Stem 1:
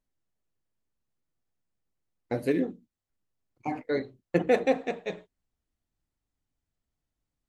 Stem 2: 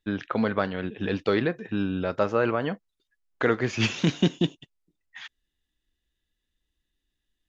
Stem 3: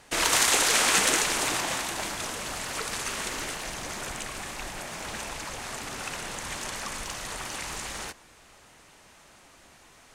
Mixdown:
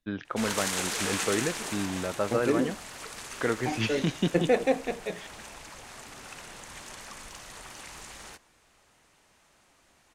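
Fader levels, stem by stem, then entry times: -0.5, -5.0, -9.0 dB; 0.00, 0.00, 0.25 s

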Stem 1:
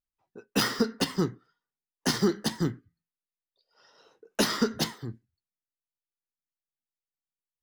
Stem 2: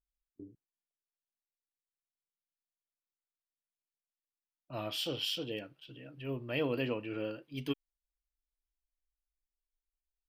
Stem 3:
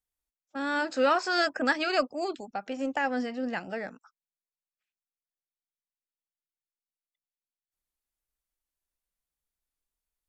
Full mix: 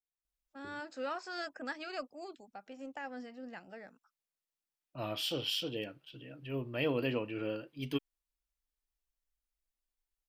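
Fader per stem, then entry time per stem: off, +0.5 dB, -14.5 dB; off, 0.25 s, 0.00 s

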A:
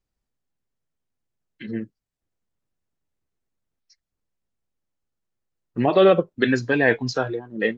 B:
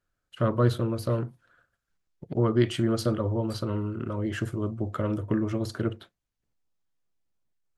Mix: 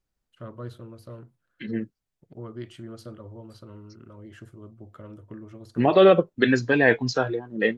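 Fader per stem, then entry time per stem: 0.0, -15.0 dB; 0.00, 0.00 s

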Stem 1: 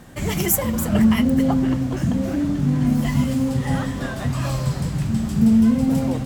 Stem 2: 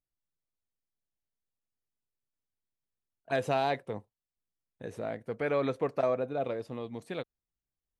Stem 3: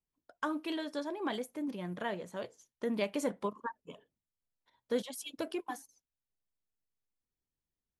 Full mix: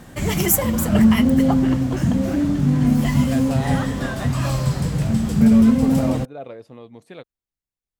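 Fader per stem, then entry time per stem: +2.0, -2.0, -9.5 dB; 0.00, 0.00, 0.00 s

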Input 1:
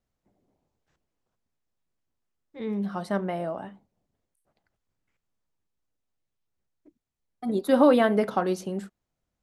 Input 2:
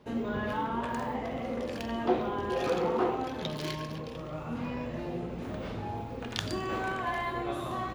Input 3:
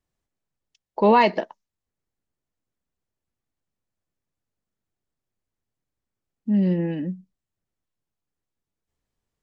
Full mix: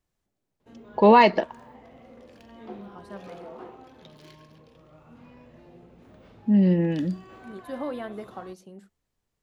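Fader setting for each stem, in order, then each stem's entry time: -14.5, -15.0, +1.5 dB; 0.00, 0.60, 0.00 s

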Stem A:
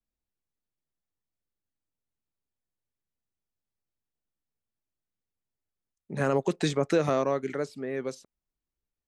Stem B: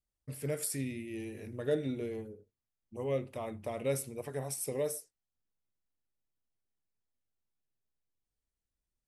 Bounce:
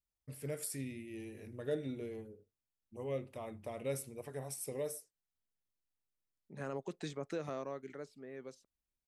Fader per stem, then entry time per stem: -15.5, -5.5 dB; 0.40, 0.00 s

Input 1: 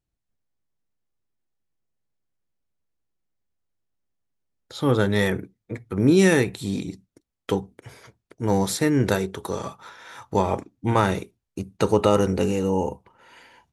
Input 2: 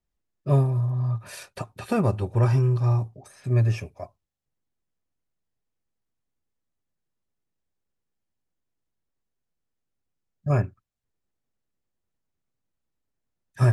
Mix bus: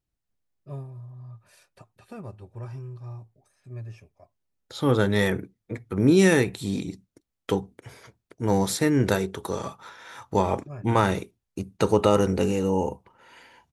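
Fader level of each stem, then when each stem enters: -1.0, -17.0 dB; 0.00, 0.20 s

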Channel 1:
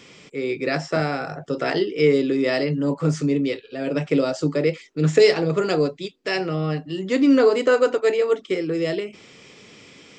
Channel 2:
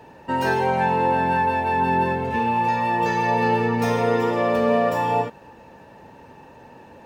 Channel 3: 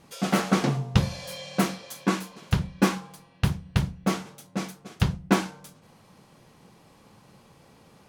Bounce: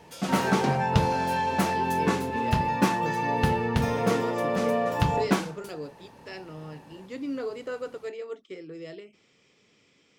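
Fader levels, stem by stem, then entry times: -17.0, -6.5, -2.5 dB; 0.00, 0.00, 0.00 s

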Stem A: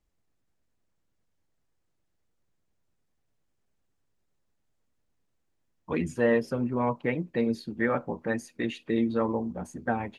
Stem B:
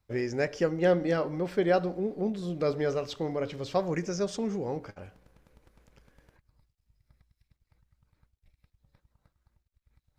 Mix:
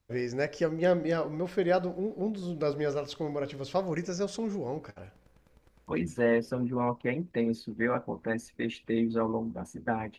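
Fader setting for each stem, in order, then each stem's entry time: -2.0, -1.5 dB; 0.00, 0.00 s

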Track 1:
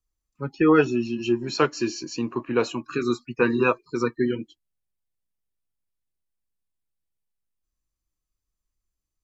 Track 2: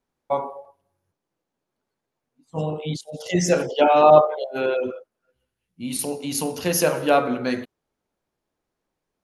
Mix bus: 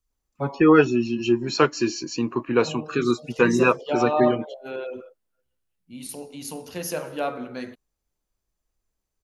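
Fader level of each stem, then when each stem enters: +2.5, -9.5 dB; 0.00, 0.10 s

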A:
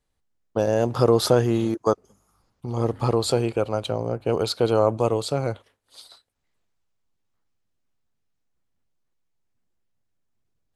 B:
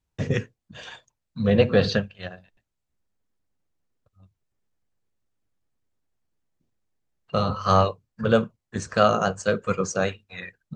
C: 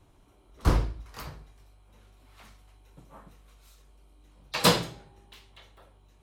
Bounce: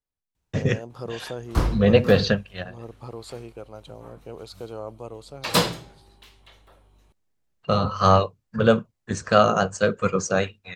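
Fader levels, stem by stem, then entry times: -16.0, +2.0, +1.0 dB; 0.00, 0.35, 0.90 s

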